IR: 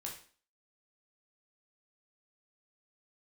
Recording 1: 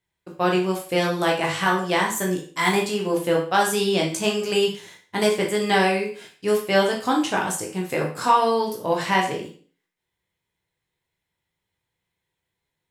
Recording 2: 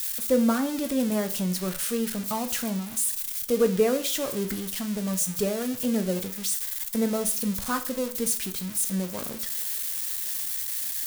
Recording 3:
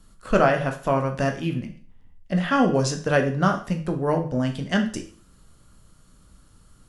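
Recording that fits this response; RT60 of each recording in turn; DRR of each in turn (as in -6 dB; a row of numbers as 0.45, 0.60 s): 1; 0.45, 0.45, 0.45 s; -2.0, 7.5, 3.5 dB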